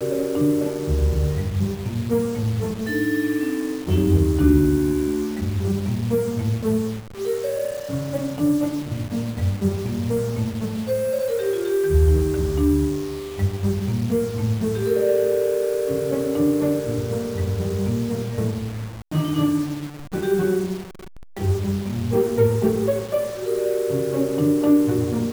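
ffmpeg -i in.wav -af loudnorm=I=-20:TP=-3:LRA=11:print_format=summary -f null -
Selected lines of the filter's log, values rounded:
Input Integrated:    -22.3 LUFS
Input True Peak:      -4.5 dBTP
Input LRA:             3.6 LU
Input Threshold:     -32.4 LUFS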